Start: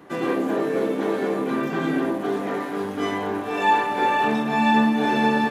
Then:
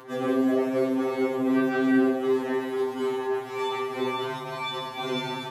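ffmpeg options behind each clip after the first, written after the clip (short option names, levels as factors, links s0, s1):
-af "acompressor=mode=upward:threshold=0.0112:ratio=2.5,afftfilt=real='re*2.45*eq(mod(b,6),0)':imag='im*2.45*eq(mod(b,6),0)':win_size=2048:overlap=0.75"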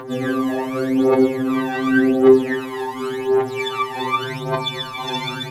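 -af "aphaser=in_gain=1:out_gain=1:delay=1.2:decay=0.76:speed=0.88:type=triangular,volume=1.58"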